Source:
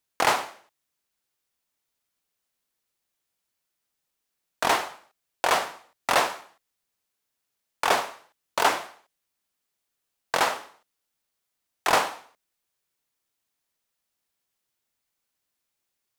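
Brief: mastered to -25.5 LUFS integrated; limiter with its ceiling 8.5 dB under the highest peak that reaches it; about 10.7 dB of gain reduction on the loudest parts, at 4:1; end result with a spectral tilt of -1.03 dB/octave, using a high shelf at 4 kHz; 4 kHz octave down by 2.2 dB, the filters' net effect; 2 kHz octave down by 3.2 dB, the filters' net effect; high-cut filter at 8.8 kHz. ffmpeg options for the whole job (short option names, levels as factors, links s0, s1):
-af "lowpass=8800,equalizer=f=2000:t=o:g=-4.5,highshelf=f=4000:g=7,equalizer=f=4000:t=o:g=-5.5,acompressor=threshold=0.0316:ratio=4,volume=4.47,alimiter=limit=0.398:level=0:latency=1"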